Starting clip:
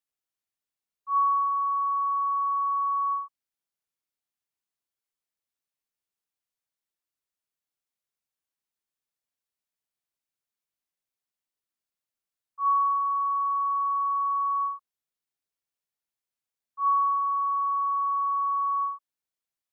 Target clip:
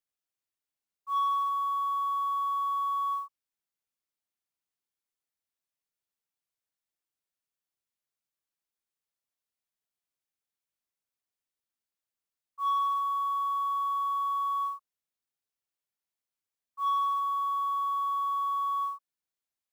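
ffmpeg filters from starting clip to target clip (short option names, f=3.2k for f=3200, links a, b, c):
-af "acrusher=bits=7:mode=log:mix=0:aa=0.000001,asoftclip=type=tanh:threshold=-20dB,volume=-2.5dB"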